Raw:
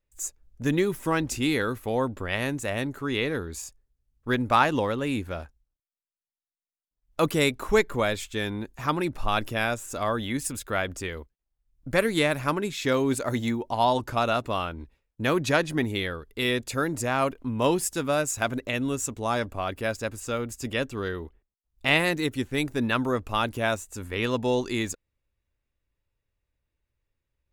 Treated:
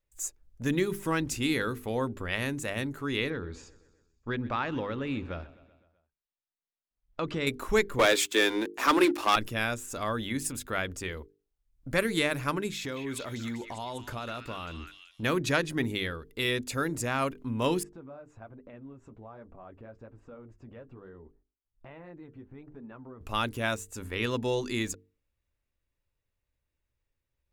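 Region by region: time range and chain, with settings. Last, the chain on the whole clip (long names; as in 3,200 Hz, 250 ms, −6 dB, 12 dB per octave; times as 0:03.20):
0:03.30–0:07.47: Bessel low-pass filter 3,600 Hz, order 4 + downward compressor 2 to 1, threshold −26 dBFS + repeating echo 127 ms, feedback 59%, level −20 dB
0:07.99–0:09.36: Butterworth high-pass 270 Hz 48 dB per octave + leveller curve on the samples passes 3
0:12.76–0:15.23: downward compressor 3 to 1, threshold −31 dBFS + echo through a band-pass that steps 199 ms, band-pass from 2,100 Hz, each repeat 0.7 octaves, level −2.5 dB
0:17.83–0:23.21: low-pass filter 1,100 Hz + downward compressor 4 to 1, threshold −39 dBFS + flanger 1.2 Hz, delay 3.7 ms, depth 6.9 ms, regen −41%
whole clip: mains-hum notches 50/100/150/200/250/300/350/400/450 Hz; dynamic equaliser 720 Hz, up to −5 dB, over −40 dBFS, Q 1.4; level −2 dB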